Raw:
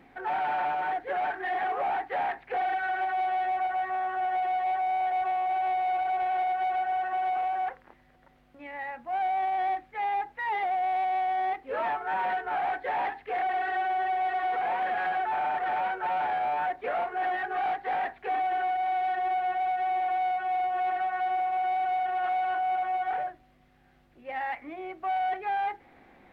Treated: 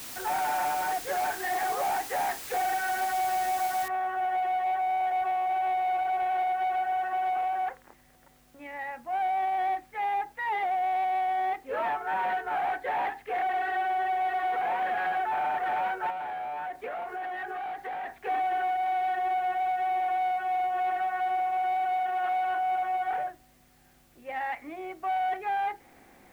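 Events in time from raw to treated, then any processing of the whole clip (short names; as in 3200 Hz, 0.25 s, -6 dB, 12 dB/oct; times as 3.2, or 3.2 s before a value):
3.88 noise floor step -41 dB -66 dB
16.1–18.18 compressor, threshold -32 dBFS
21.79–22.45 HPF 95 Hz 6 dB/oct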